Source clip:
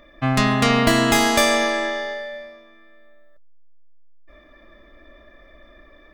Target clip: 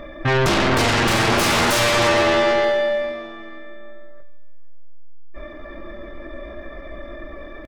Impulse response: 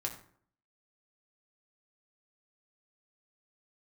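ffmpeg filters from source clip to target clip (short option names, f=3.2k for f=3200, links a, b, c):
-filter_complex "[0:a]highshelf=f=2.1k:g=-11.5,aeval=exprs='(tanh(8.91*val(0)+0.1)-tanh(0.1))/8.91':c=same,atempo=0.8,aeval=exprs='0.126*sin(PI/2*2.51*val(0)/0.126)':c=same,aecho=1:1:464|928:0.0668|0.0214,asplit=2[a][b];[1:a]atrim=start_sample=2205[c];[b][c]afir=irnorm=-1:irlink=0,volume=-4dB[d];[a][d]amix=inputs=2:normalize=0"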